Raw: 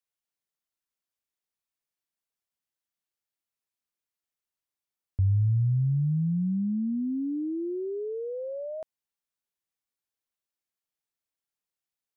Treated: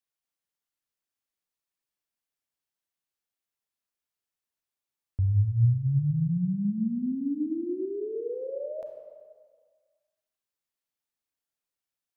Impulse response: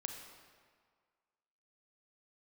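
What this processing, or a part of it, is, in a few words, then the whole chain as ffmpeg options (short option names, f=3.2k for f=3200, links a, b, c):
stairwell: -filter_complex "[1:a]atrim=start_sample=2205[a];[0:a][a]afir=irnorm=-1:irlink=0,volume=1.5dB"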